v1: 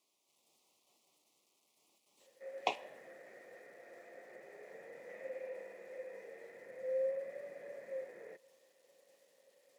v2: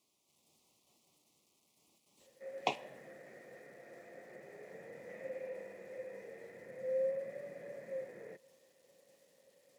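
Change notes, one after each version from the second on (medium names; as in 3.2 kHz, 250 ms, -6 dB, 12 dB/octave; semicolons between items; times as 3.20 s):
master: add tone controls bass +14 dB, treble +2 dB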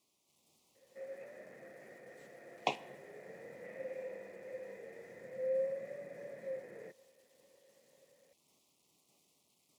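background: entry -1.45 s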